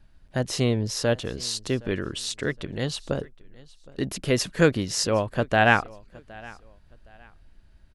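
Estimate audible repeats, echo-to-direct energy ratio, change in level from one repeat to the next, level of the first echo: 2, −22.5 dB, −11.0 dB, −23.0 dB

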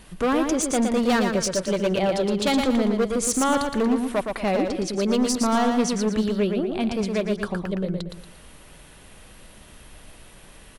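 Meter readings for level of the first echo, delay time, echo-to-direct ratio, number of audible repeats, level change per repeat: −5.0 dB, 116 ms, −4.5 dB, 4, −9.0 dB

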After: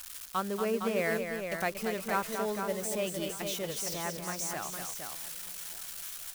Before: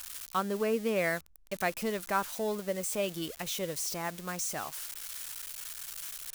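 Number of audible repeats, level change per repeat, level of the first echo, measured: 5, repeats not evenly spaced, −7.0 dB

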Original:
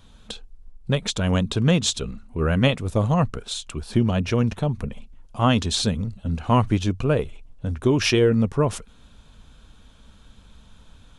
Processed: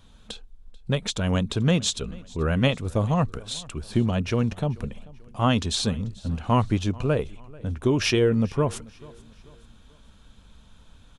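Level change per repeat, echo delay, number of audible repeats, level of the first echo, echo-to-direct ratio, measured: −7.5 dB, 438 ms, 2, −23.0 dB, −22.0 dB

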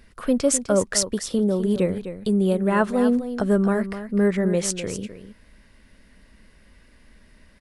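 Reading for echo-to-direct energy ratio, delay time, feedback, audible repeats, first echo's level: −11.0 dB, 254 ms, repeats not evenly spaced, 1, −11.0 dB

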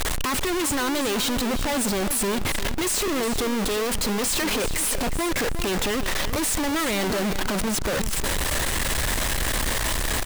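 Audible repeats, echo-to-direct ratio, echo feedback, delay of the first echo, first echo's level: 2, −11.0 dB, 25%, 359 ms, −11.5 dB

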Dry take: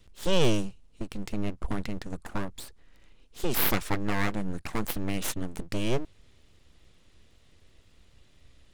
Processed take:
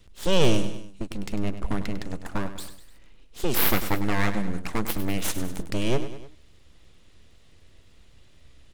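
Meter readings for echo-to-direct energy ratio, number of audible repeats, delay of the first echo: −10.0 dB, 3, 100 ms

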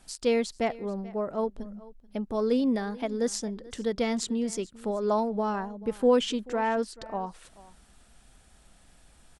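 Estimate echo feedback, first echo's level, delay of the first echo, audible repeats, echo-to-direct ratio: repeats not evenly spaced, −20.5 dB, 435 ms, 1, −20.5 dB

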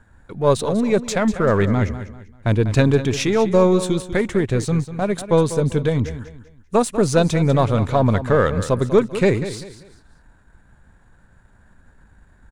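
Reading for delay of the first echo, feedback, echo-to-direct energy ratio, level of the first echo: 195 ms, 32%, −12.0 dB, −12.5 dB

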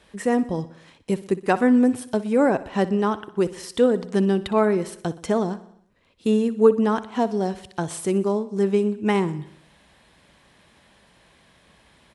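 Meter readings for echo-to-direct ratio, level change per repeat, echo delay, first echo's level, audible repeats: −15.0 dB, −4.5 dB, 61 ms, −17.0 dB, 4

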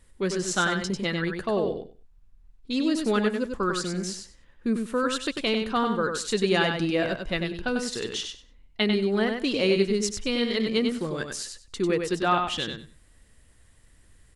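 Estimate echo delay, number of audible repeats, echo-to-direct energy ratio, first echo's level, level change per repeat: 96 ms, 2, −5.5 dB, −5.5 dB, −15.0 dB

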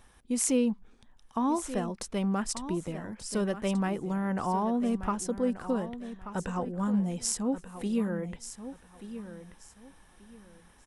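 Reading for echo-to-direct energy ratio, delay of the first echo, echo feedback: −11.5 dB, 1,183 ms, 25%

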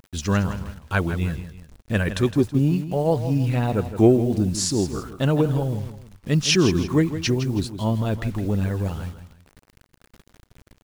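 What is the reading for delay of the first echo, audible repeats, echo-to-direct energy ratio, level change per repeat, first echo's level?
162 ms, 2, −11.0 dB, −8.5 dB, −11.5 dB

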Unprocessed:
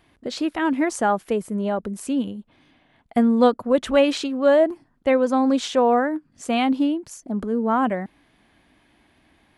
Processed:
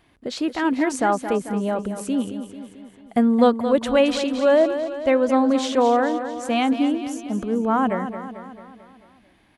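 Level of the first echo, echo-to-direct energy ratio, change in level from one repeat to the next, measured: −10.0 dB, −8.5 dB, −5.0 dB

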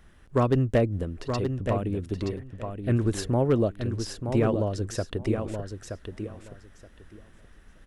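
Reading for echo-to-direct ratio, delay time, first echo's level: −7.0 dB, 924 ms, −7.0 dB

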